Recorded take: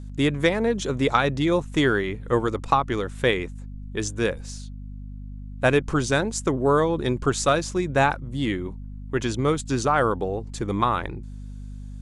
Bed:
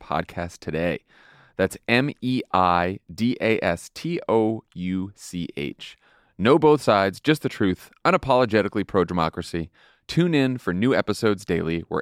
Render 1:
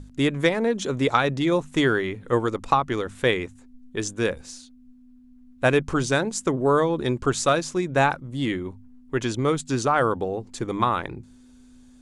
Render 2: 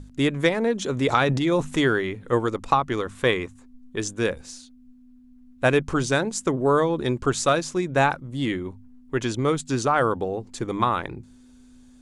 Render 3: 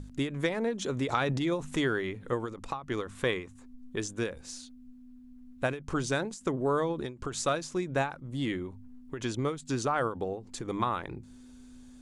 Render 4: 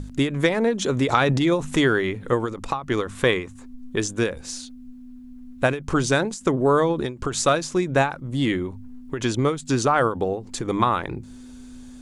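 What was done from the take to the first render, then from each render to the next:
mains-hum notches 50/100/150/200 Hz
0:00.92–0:01.85: transient designer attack −1 dB, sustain +8 dB; 0:02.99–0:03.96: parametric band 1,100 Hz +8 dB 0.25 octaves
downward compressor 1.5 to 1, threshold −39 dBFS, peak gain reduction 9 dB; every ending faded ahead of time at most 150 dB per second
level +9.5 dB

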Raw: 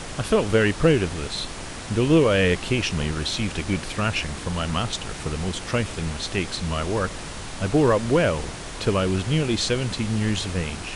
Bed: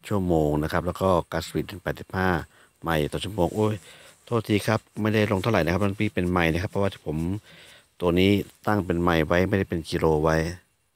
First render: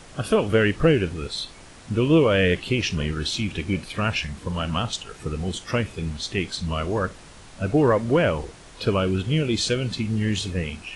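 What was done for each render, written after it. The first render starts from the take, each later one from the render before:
noise reduction from a noise print 11 dB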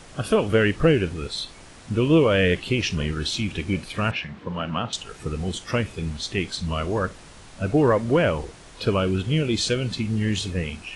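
0:04.11–0:04.93: band-pass filter 140–2,800 Hz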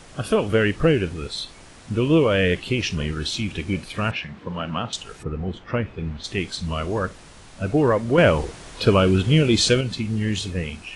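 0:05.22–0:06.23: low-pass filter 1,600 Hz → 2,600 Hz
0:08.18–0:09.81: clip gain +5.5 dB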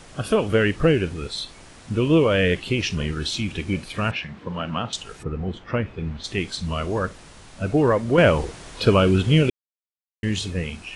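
0:09.50–0:10.23: silence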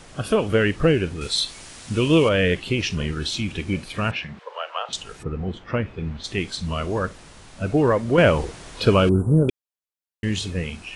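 0:01.21–0:02.29: high-shelf EQ 2,400 Hz +10.5 dB
0:04.39–0:04.89: Butterworth high-pass 470 Hz 48 dB per octave
0:09.09–0:09.49: inverse Chebyshev band-stop filter 2,100–5,400 Hz, stop band 50 dB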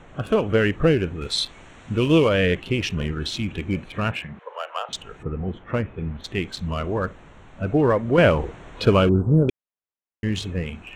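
adaptive Wiener filter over 9 samples
high-shelf EQ 8,400 Hz −5 dB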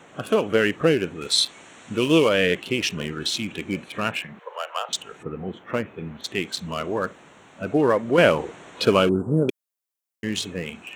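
high-pass filter 200 Hz 12 dB per octave
high-shelf EQ 5,300 Hz +11.5 dB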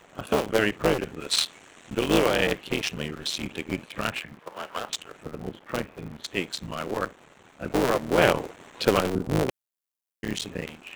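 sub-harmonics by changed cycles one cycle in 3, muted
amplitude modulation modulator 83 Hz, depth 30%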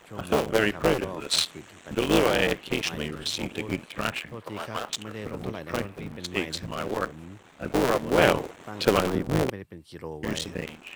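mix in bed −16 dB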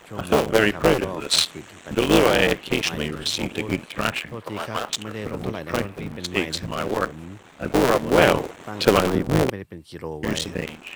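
level +5 dB
brickwall limiter −1 dBFS, peak gain reduction 3 dB

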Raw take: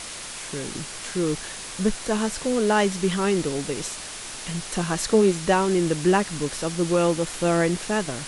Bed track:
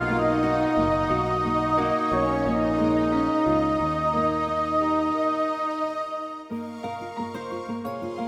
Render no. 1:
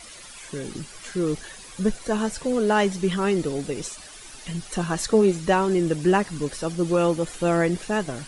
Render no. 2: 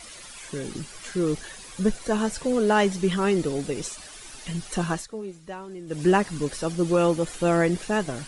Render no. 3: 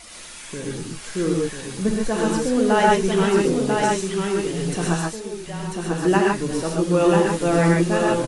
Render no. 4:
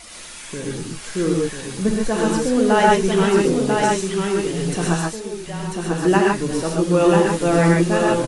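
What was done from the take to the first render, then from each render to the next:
broadband denoise 12 dB, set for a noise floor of −36 dBFS
0:04.91–0:06.02: duck −17 dB, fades 0.15 s
single-tap delay 993 ms −4.5 dB; reverb whose tail is shaped and stops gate 160 ms rising, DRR −1.5 dB
level +2 dB

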